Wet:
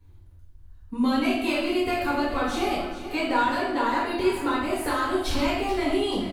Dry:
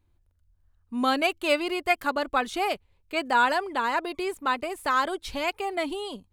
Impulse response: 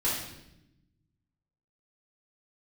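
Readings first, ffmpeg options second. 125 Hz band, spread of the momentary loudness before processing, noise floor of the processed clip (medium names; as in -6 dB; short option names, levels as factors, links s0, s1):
no reading, 8 LU, -49 dBFS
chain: -filter_complex "[0:a]equalizer=f=89:w=0.49:g=5,acrossover=split=150[s0][s1];[s1]acompressor=threshold=0.02:ratio=5[s2];[s0][s2]amix=inputs=2:normalize=0,asplit=2[s3][s4];[s4]asoftclip=type=tanh:threshold=0.0168,volume=0.251[s5];[s3][s5]amix=inputs=2:normalize=0,aecho=1:1:433|866|1299|1732:0.224|0.0963|0.0414|0.0178[s6];[1:a]atrim=start_sample=2205[s7];[s6][s7]afir=irnorm=-1:irlink=0"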